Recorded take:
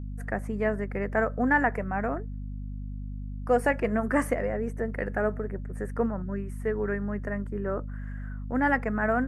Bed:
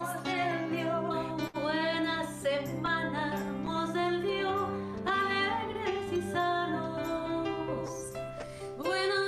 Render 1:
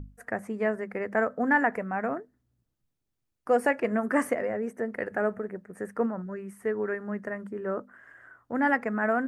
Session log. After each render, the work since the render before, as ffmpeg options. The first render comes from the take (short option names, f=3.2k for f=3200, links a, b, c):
-af "bandreject=f=50:t=h:w=6,bandreject=f=100:t=h:w=6,bandreject=f=150:t=h:w=6,bandreject=f=200:t=h:w=6,bandreject=f=250:t=h:w=6"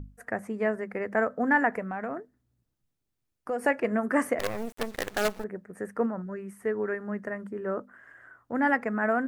-filter_complex "[0:a]asettb=1/sr,asplit=3[a][b][c];[a]atrim=end=1.794[d];[b]atrim=start=1.79:end=3.65,asetpts=PTS-STARTPTS,afade=t=in:d=0.004:c=qsin,afade=t=out:st=1.856:d=0.004:c=qsin,acompressor=threshold=-30dB:ratio=2.5:attack=3.2:release=140:knee=1:detection=peak[e];[c]atrim=start=3.646[f];[d][e]acrossfade=d=0.004:c1=hsin:c2=qsin[g];[g][f]acrossfade=d=0.004:c1=qsin:c2=hsin,asettb=1/sr,asplit=3[h][i][j];[h]atrim=end=4.394[k];[i]atrim=start=4.39:end=5.44,asetpts=PTS-STARTPTS,afade=t=in:d=0.004:c=qsin,afade=t=out:st=1.046:d=0.004:c=qsin,acrusher=bits=5:dc=4:mix=0:aa=0.000001[l];[j]atrim=start=5.436[m];[k][l]acrossfade=d=0.004:c1=hsin:c2=qsin[n];[n][m]acrossfade=d=0.004:c1=qsin:c2=hsin"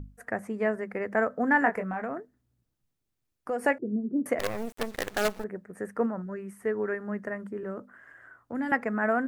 -filter_complex "[0:a]asettb=1/sr,asplit=3[a][b][c];[a]atrim=end=1.594[d];[b]atrim=start=1.59:end=2.02,asetpts=PTS-STARTPTS,afade=t=in:d=0.004:c=qsin,afade=t=out:st=0.426:d=0.004:c=qsin,asplit=2[e][f];[f]adelay=22,volume=-6dB[g];[e][g]amix=inputs=2:normalize=0,atrim=end_sample=18963[h];[c]atrim=start=2.016[i];[d][h]acrossfade=d=0.004:c1=hsin:c2=qsin[j];[j][i]acrossfade=d=0.004:c1=qsin:c2=hsin,asettb=1/sr,asplit=3[k][l][m];[k]atrim=end=3.784[n];[l]atrim=start=3.78:end=4.26,asetpts=PTS-STARTPTS,afade=t=in:d=0.004:c=qsin,afade=t=out:st=0.476:d=0.004:c=qsin,asuperpass=centerf=200:order=8:qfactor=0.69[o];[m]atrim=start=4.256[p];[n][o]acrossfade=d=0.004:c1=hsin:c2=qsin[q];[q][p]acrossfade=d=0.004:c1=qsin:c2=hsin,asettb=1/sr,asplit=3[r][s][t];[r]atrim=end=7.634[u];[s]atrim=start=7.63:end=8.72,asetpts=PTS-STARTPTS,afade=t=in:d=0.004:c=qsin,afade=t=out:st=1.086:d=0.004:c=qsin,acrossover=split=280|3000[v][w][x];[w]acompressor=threshold=-36dB:ratio=6:attack=3.2:release=140:knee=2.83:detection=peak[y];[v][y][x]amix=inputs=3:normalize=0[z];[t]atrim=start=8.716[aa];[u][z]acrossfade=d=0.004:c1=hsin:c2=qsin[ab];[ab][aa]acrossfade=d=0.004:c1=qsin:c2=hsin"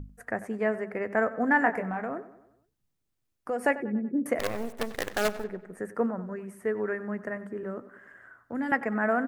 -filter_complex "[0:a]asplit=2[a][b];[b]adelay=95,lowpass=f=3.9k:p=1,volume=-15.5dB,asplit=2[c][d];[d]adelay=95,lowpass=f=3.9k:p=1,volume=0.53,asplit=2[e][f];[f]adelay=95,lowpass=f=3.9k:p=1,volume=0.53,asplit=2[g][h];[h]adelay=95,lowpass=f=3.9k:p=1,volume=0.53,asplit=2[i][j];[j]adelay=95,lowpass=f=3.9k:p=1,volume=0.53[k];[a][c][e][g][i][k]amix=inputs=6:normalize=0"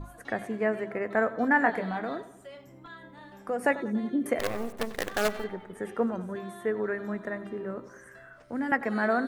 -filter_complex "[1:a]volume=-16dB[a];[0:a][a]amix=inputs=2:normalize=0"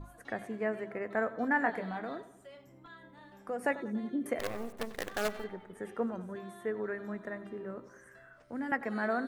-af "volume=-6dB"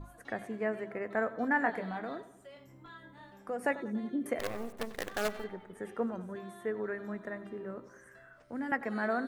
-filter_complex "[0:a]asettb=1/sr,asplit=3[a][b][c];[a]atrim=end=2.544[d];[b]atrim=start=2.54:end=3.31,asetpts=PTS-STARTPTS,afade=t=in:d=0.004:c=qsin,afade=t=out:st=0.766:d=0.004:c=qsin,asplit=2[e][f];[f]adelay=22,volume=-3.5dB[g];[e][g]amix=inputs=2:normalize=0,atrim=end_sample=33957[h];[c]atrim=start=3.306[i];[d][h]acrossfade=d=0.004:c1=hsin:c2=qsin[j];[j][i]acrossfade=d=0.004:c1=qsin:c2=hsin"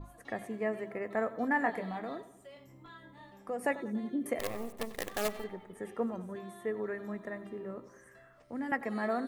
-af "bandreject=f=1.5k:w=6.2,adynamicequalizer=threshold=0.00141:dfrequency=7600:dqfactor=0.7:tfrequency=7600:tqfactor=0.7:attack=5:release=100:ratio=0.375:range=3:mode=boostabove:tftype=highshelf"